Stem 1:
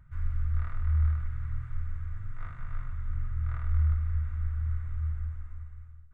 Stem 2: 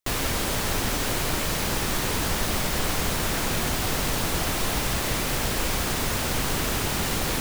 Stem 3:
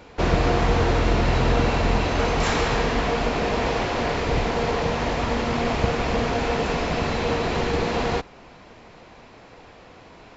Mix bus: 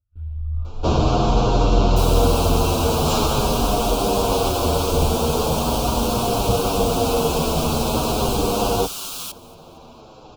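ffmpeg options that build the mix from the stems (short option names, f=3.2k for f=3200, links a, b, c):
-filter_complex "[0:a]agate=range=-21dB:threshold=-32dB:ratio=16:detection=peak,asplit=2[a][b];[b]afreqshift=0.44[c];[a][c]amix=inputs=2:normalize=1,volume=-2dB[d];[1:a]highpass=f=1.2k:w=0.5412,highpass=f=1.2k:w=1.3066,adelay=1900,volume=-4dB,asplit=2[e][f];[f]volume=-22.5dB[g];[2:a]adelay=650,volume=0dB[h];[g]aecho=0:1:230|460|690|920|1150|1380:1|0.41|0.168|0.0689|0.0283|0.0116[i];[d][e][h][i]amix=inputs=4:normalize=0,acontrast=82,asuperstop=centerf=1900:order=4:qfactor=1.2,asplit=2[j][k];[k]adelay=8.4,afreqshift=-0.43[l];[j][l]amix=inputs=2:normalize=1"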